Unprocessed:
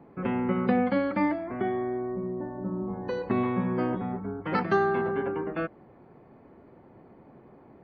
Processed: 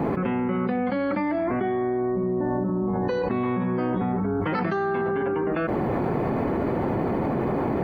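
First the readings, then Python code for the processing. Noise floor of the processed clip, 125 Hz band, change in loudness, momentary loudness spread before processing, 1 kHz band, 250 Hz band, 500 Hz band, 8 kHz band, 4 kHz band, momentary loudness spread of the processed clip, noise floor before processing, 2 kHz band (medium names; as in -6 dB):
-26 dBFS, +7.0 dB, +3.5 dB, 9 LU, +4.0 dB, +5.0 dB, +5.0 dB, no reading, +2.5 dB, 0 LU, -54 dBFS, +2.5 dB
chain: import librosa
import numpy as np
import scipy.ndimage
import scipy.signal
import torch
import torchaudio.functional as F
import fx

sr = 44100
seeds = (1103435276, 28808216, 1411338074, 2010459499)

y = fx.env_flatten(x, sr, amount_pct=100)
y = y * 10.0 ** (-4.5 / 20.0)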